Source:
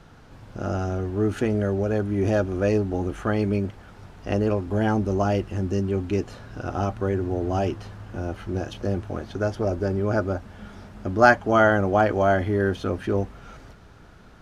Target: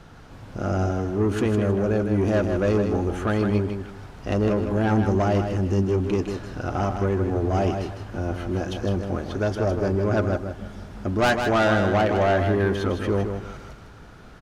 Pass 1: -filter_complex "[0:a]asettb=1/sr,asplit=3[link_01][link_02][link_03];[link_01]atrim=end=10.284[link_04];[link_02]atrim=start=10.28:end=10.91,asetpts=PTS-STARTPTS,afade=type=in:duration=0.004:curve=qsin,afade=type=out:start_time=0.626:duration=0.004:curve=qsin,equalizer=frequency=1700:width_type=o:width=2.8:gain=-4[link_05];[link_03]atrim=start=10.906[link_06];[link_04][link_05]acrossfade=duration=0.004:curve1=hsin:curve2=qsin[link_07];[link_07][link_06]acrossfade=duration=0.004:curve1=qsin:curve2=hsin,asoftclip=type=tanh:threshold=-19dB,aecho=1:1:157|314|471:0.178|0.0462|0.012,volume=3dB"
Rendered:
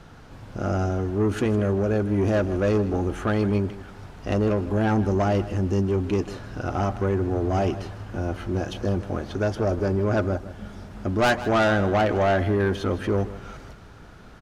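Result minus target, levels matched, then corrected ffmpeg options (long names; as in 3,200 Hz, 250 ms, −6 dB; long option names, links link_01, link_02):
echo-to-direct −8.5 dB
-filter_complex "[0:a]asettb=1/sr,asplit=3[link_01][link_02][link_03];[link_01]atrim=end=10.284[link_04];[link_02]atrim=start=10.28:end=10.91,asetpts=PTS-STARTPTS,afade=type=in:duration=0.004:curve=qsin,afade=type=out:start_time=0.626:duration=0.004:curve=qsin,equalizer=frequency=1700:width_type=o:width=2.8:gain=-4[link_05];[link_03]atrim=start=10.906[link_06];[link_04][link_05]acrossfade=duration=0.004:curve1=hsin:curve2=qsin[link_07];[link_07][link_06]acrossfade=duration=0.004:curve1=qsin:curve2=hsin,asoftclip=type=tanh:threshold=-19dB,aecho=1:1:157|314|471:0.473|0.123|0.032,volume=3dB"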